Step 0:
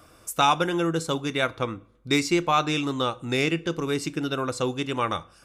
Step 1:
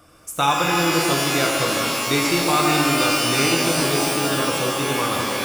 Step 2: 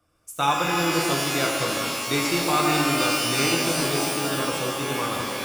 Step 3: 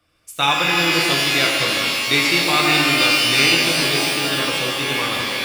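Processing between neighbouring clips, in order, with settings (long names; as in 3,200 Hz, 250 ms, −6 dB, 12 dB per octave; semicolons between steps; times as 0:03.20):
reverb with rising layers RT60 3.5 s, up +12 semitones, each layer −2 dB, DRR −1 dB
multiband upward and downward expander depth 40%; level −3.5 dB
flat-topped bell 2,900 Hz +9 dB; level +2 dB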